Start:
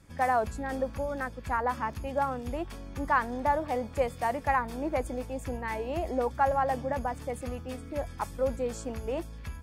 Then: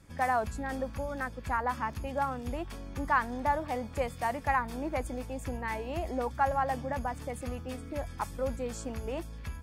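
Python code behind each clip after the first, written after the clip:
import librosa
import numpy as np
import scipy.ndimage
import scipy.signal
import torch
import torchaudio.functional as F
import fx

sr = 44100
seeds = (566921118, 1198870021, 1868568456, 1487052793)

y = fx.dynamic_eq(x, sr, hz=470.0, q=1.0, threshold_db=-38.0, ratio=4.0, max_db=-5)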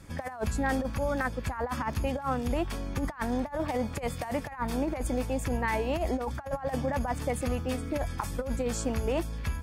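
y = fx.over_compress(x, sr, threshold_db=-34.0, ratio=-0.5)
y = y * 10.0 ** (5.0 / 20.0)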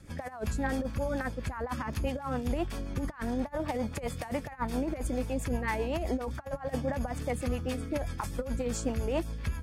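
y = fx.rotary(x, sr, hz=7.5)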